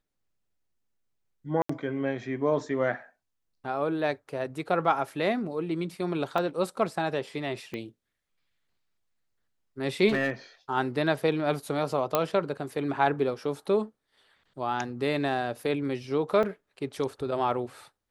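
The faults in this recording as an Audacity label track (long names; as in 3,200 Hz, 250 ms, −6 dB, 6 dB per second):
1.620000	1.690000	drop-out 74 ms
6.380000	6.380000	drop-out 2.9 ms
7.740000	7.740000	click −23 dBFS
10.080000	10.310000	clipping −21.5 dBFS
12.150000	12.150000	click −9 dBFS
16.430000	16.430000	drop-out 4.1 ms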